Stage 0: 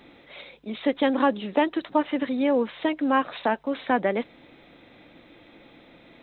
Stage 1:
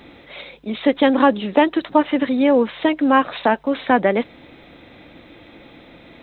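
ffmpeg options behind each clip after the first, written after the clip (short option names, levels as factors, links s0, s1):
-af "equalizer=f=69:w=1.1:g=6,volume=2.24"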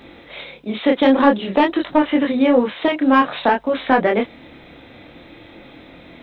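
-af "asoftclip=type=tanh:threshold=0.631,flanger=delay=22.5:depth=7.8:speed=0.51,volume=1.78"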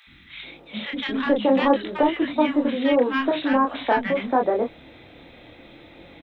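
-filter_complex "[0:a]acrossover=split=230|1300[s0][s1][s2];[s0]adelay=70[s3];[s1]adelay=430[s4];[s3][s4][s2]amix=inputs=3:normalize=0,volume=0.708"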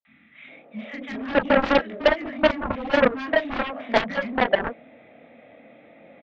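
-filter_complex "[0:a]highpass=230,equalizer=f=230:t=q:w=4:g=9,equalizer=f=350:t=q:w=4:g=-9,equalizer=f=630:t=q:w=4:g=7,equalizer=f=960:t=q:w=4:g=-10,equalizer=f=1500:t=q:w=4:g=-6,lowpass=f=2200:w=0.5412,lowpass=f=2200:w=1.3066,acrossover=split=290[s0][s1];[s1]adelay=50[s2];[s0][s2]amix=inputs=2:normalize=0,aeval=exprs='0.447*(cos(1*acos(clip(val(0)/0.447,-1,1)))-cos(1*PI/2))+0.126*(cos(7*acos(clip(val(0)/0.447,-1,1)))-cos(7*PI/2))':c=same"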